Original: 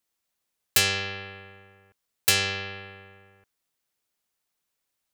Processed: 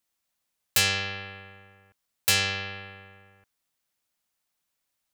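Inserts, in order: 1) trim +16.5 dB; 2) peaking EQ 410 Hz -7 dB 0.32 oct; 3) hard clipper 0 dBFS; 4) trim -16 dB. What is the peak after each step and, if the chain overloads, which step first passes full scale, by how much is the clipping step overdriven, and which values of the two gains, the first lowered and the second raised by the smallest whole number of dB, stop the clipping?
+9.5 dBFS, +9.5 dBFS, 0.0 dBFS, -16.0 dBFS; step 1, 9.5 dB; step 1 +6.5 dB, step 4 -6 dB

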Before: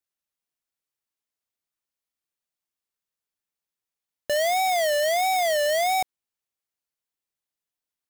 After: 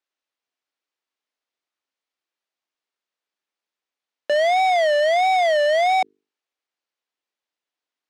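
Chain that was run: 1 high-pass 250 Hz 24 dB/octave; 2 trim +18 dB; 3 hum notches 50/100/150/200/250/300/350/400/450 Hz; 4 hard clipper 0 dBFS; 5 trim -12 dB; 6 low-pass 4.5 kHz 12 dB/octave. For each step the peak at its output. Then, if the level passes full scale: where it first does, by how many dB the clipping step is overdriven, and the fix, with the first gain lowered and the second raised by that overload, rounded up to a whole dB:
-14.0 dBFS, +4.0 dBFS, +4.0 dBFS, 0.0 dBFS, -12.0 dBFS, -12.0 dBFS; step 2, 4.0 dB; step 2 +14 dB, step 5 -8 dB

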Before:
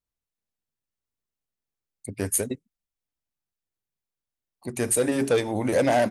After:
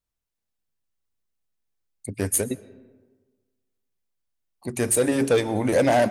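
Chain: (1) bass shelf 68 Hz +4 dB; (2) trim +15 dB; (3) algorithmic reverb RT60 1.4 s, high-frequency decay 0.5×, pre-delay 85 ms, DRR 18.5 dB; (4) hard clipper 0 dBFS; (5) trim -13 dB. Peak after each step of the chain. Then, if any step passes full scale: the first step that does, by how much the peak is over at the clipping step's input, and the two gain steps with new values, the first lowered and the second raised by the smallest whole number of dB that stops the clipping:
-10.0 dBFS, +5.0 dBFS, +5.0 dBFS, 0.0 dBFS, -13.0 dBFS; step 2, 5.0 dB; step 2 +10 dB, step 5 -8 dB

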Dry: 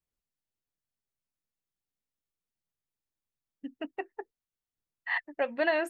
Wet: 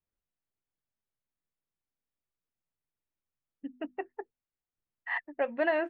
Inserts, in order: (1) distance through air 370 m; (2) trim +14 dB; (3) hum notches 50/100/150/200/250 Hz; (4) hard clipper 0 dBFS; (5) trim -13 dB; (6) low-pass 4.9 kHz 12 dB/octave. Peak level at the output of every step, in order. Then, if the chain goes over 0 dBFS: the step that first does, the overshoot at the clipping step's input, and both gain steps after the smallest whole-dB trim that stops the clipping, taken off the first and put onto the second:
-18.0 dBFS, -4.0 dBFS, -4.0 dBFS, -4.0 dBFS, -17.0 dBFS, -17.0 dBFS; nothing clips

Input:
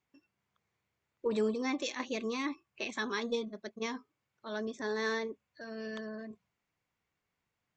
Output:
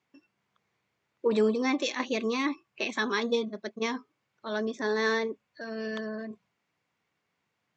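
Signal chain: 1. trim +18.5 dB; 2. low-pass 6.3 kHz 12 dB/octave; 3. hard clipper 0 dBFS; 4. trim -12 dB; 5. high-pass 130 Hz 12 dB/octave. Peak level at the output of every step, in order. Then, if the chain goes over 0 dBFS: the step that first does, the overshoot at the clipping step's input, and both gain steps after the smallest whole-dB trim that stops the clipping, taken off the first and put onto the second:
-1.5 dBFS, -1.5 dBFS, -1.5 dBFS, -13.5 dBFS, -14.0 dBFS; nothing clips

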